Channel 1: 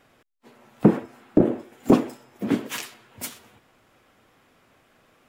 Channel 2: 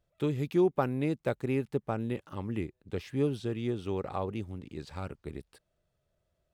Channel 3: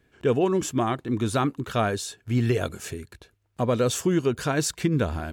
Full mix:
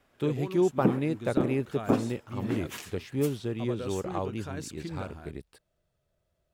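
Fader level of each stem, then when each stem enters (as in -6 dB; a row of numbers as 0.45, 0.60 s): -9.0, +1.0, -15.0 dB; 0.00, 0.00, 0.00 s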